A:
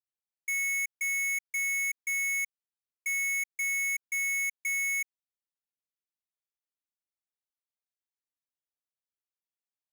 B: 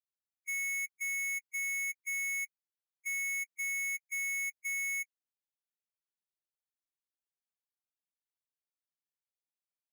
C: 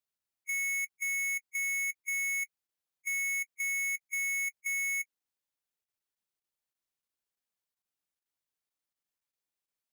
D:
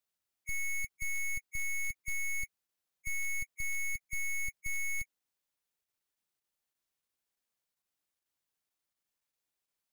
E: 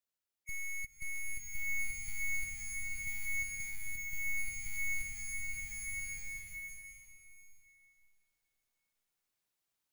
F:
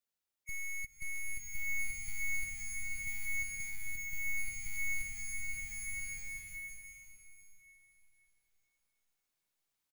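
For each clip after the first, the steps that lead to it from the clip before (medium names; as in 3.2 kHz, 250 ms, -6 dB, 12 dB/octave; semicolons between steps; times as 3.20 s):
harmonic-percussive separation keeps harmonic; trim -5 dB
level held to a coarse grid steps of 12 dB; trim +4 dB
one-sided wavefolder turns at -39 dBFS; trim +2.5 dB
swelling reverb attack 1440 ms, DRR -5.5 dB; trim -5 dB
feedback delay 524 ms, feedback 50%, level -20.5 dB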